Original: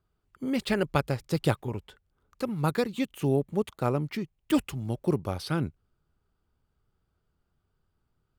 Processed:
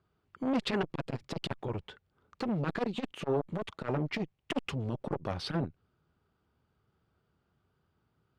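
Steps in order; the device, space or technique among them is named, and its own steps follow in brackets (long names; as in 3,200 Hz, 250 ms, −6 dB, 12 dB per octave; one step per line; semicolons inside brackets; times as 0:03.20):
valve radio (band-pass filter 92–4,200 Hz; tube saturation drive 25 dB, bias 0.4; saturating transformer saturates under 570 Hz)
level +5.5 dB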